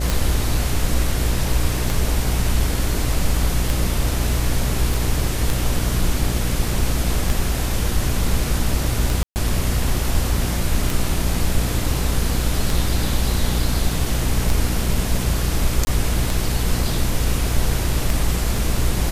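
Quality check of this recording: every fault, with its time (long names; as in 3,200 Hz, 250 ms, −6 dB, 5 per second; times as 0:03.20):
mains buzz 60 Hz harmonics 12 −23 dBFS
scratch tick 33 1/3 rpm
0:04.94: click
0:09.23–0:09.36: drop-out 129 ms
0:15.85–0:15.87: drop-out 20 ms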